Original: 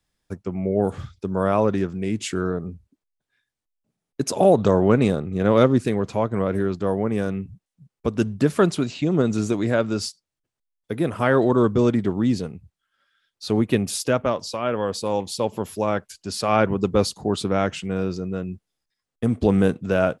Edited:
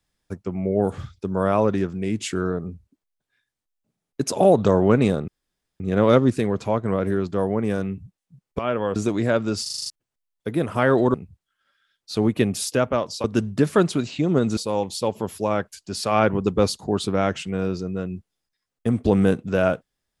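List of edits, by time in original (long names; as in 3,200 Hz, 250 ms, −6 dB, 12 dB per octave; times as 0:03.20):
0:05.28: splice in room tone 0.52 s
0:08.07–0:09.40: swap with 0:14.57–0:14.94
0:10.06: stutter in place 0.04 s, 7 plays
0:11.58–0:12.47: remove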